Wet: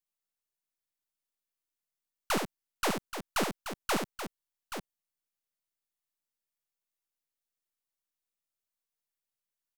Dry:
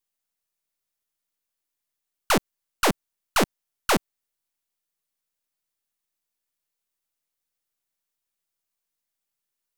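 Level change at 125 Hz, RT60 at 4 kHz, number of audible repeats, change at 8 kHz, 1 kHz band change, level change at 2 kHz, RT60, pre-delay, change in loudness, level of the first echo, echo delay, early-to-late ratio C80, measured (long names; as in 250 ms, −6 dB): −8.0 dB, no reverb audible, 2, −7.5 dB, −7.5 dB, −7.5 dB, no reverb audible, no reverb audible, −9.5 dB, −6.0 dB, 73 ms, no reverb audible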